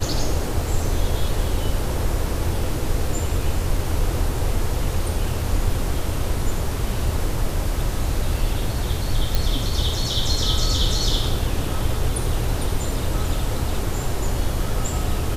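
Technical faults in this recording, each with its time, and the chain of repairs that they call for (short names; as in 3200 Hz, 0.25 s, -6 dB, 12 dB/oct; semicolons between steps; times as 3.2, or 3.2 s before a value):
9.35 pop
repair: de-click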